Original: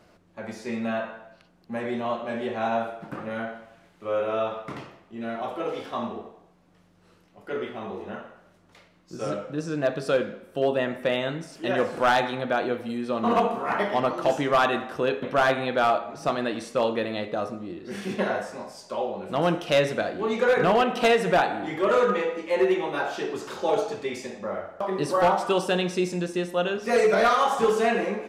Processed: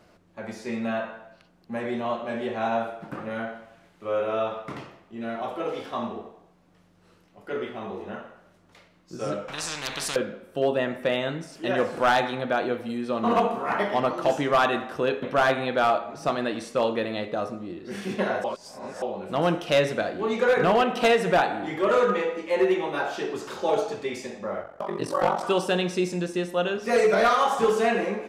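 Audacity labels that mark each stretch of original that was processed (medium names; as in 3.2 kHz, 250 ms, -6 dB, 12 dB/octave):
9.480000	10.160000	spectrum-flattening compressor 10:1
18.440000	19.020000	reverse
24.620000	25.440000	ring modulator 23 Hz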